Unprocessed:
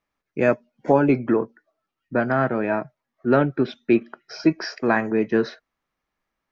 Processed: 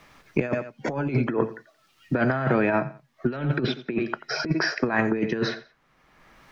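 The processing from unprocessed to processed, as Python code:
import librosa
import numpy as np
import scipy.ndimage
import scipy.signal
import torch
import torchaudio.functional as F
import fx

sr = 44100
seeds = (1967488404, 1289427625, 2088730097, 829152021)

p1 = fx.lowpass(x, sr, hz=3000.0, slope=6)
p2 = fx.peak_eq(p1, sr, hz=140.0, db=7.0, octaves=0.43)
p3 = p2 + fx.echo_feedback(p2, sr, ms=88, feedback_pct=22, wet_db=-18.5, dry=0)
p4 = fx.over_compress(p3, sr, threshold_db=-23.0, ratio=-0.5)
p5 = fx.high_shelf(p4, sr, hz=2100.0, db=9.0)
y = fx.band_squash(p5, sr, depth_pct=70)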